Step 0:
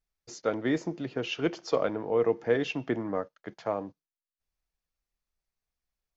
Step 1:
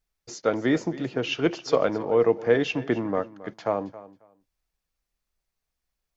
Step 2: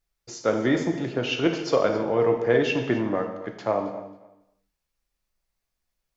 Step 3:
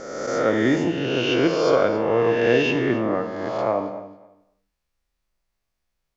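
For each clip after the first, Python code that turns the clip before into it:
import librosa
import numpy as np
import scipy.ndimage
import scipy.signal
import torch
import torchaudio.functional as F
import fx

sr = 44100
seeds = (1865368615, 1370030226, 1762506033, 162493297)

y1 = fx.echo_feedback(x, sr, ms=271, feedback_pct=18, wet_db=-17.5)
y1 = y1 * 10.0 ** (5.0 / 20.0)
y2 = fx.rev_gated(y1, sr, seeds[0], gate_ms=330, shape='falling', drr_db=3.5)
y3 = fx.spec_swells(y2, sr, rise_s=1.46)
y3 = fx.high_shelf(y3, sr, hz=6000.0, db=-6.5)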